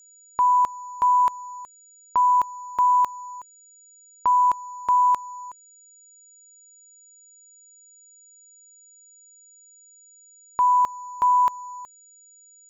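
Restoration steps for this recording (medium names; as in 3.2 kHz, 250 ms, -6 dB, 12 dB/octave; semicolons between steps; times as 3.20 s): band-stop 6.9 kHz, Q 30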